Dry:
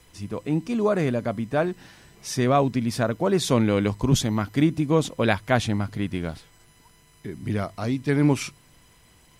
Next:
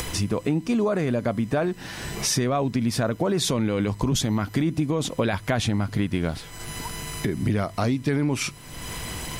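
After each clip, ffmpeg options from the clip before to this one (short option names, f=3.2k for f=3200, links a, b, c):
-af "acompressor=mode=upward:threshold=-28dB:ratio=2.5,alimiter=limit=-15.5dB:level=0:latency=1:release=12,acompressor=threshold=-29dB:ratio=6,volume=9dB"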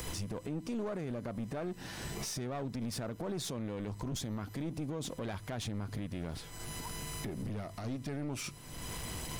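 -af "equalizer=f=2.1k:t=o:w=1.7:g=-3.5,alimiter=limit=-22dB:level=0:latency=1:release=80,aeval=exprs='clip(val(0),-1,0.0266)':c=same,volume=-6.5dB"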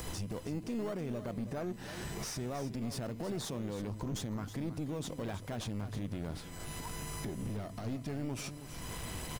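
-filter_complex "[0:a]asplit=2[a][b];[b]acrusher=samples=13:mix=1:aa=0.000001:lfo=1:lforange=13:lforate=0.41,volume=-9dB[c];[a][c]amix=inputs=2:normalize=0,aecho=1:1:320:0.251,volume=-2.5dB"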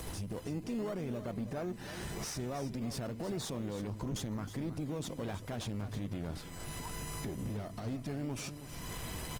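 -ar 48000 -c:a libopus -b:a 24k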